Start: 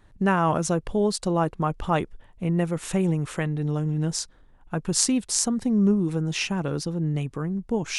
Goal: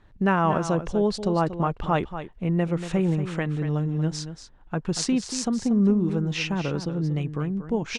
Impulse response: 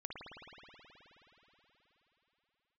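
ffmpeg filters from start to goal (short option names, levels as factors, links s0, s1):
-af "lowpass=4700,aecho=1:1:235:0.282"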